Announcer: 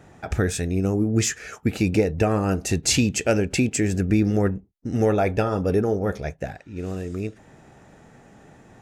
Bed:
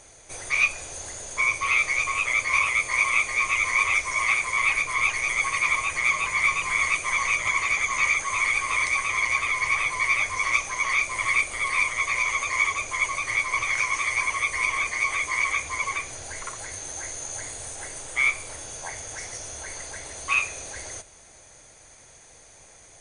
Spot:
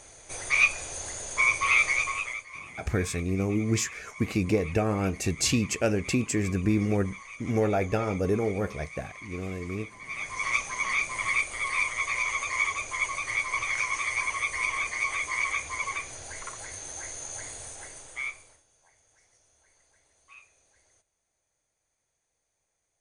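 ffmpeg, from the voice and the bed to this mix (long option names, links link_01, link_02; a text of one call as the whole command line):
ffmpeg -i stem1.wav -i stem2.wav -filter_complex "[0:a]adelay=2550,volume=-5dB[link_01];[1:a]volume=16.5dB,afade=type=out:start_time=1.86:duration=0.59:silence=0.0944061,afade=type=in:start_time=10.04:duration=0.46:silence=0.149624,afade=type=out:start_time=17.55:duration=1.08:silence=0.0562341[link_02];[link_01][link_02]amix=inputs=2:normalize=0" out.wav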